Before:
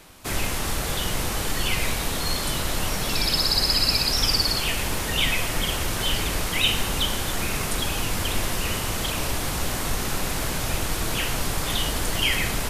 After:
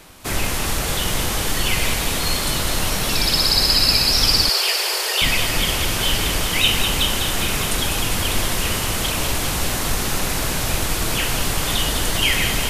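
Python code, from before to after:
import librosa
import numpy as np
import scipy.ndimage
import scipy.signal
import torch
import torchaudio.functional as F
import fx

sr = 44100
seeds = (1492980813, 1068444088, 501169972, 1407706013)

p1 = fx.steep_highpass(x, sr, hz=360.0, slope=96, at=(4.49, 5.22))
p2 = p1 + fx.echo_wet_highpass(p1, sr, ms=201, feedback_pct=74, hz=2200.0, wet_db=-6.0, dry=0)
y = p2 * 10.0 ** (4.0 / 20.0)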